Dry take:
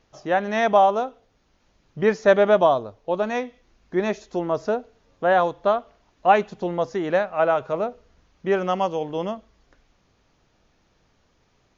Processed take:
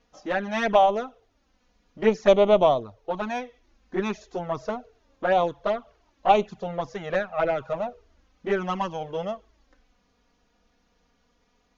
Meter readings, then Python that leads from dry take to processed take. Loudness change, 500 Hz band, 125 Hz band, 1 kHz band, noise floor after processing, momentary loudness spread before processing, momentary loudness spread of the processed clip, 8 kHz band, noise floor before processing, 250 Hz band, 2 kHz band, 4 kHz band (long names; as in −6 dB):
−2.5 dB, −2.5 dB, −2.0 dB, −3.0 dB, −68 dBFS, 11 LU, 14 LU, can't be measured, −65 dBFS, −3.0 dB, −4.0 dB, +0.5 dB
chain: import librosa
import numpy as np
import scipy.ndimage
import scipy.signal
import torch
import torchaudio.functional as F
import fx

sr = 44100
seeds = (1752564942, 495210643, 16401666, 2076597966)

y = fx.cheby_harmonics(x, sr, harmonics=(3, 4), levels_db=(-22, -23), full_scale_db=-4.0)
y = fx.env_flanger(y, sr, rest_ms=4.2, full_db=-16.0)
y = F.gain(torch.from_numpy(y), 2.0).numpy()